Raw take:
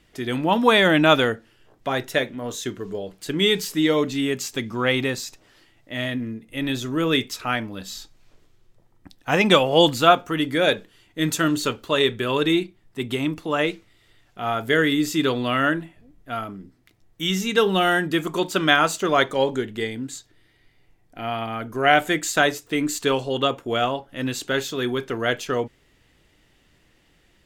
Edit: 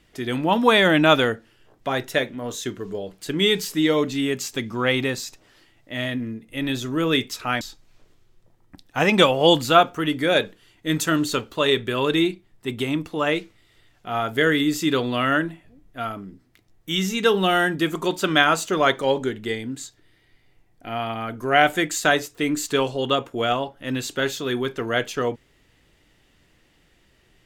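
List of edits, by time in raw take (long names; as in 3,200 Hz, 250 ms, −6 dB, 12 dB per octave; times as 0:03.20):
0:07.61–0:07.93: remove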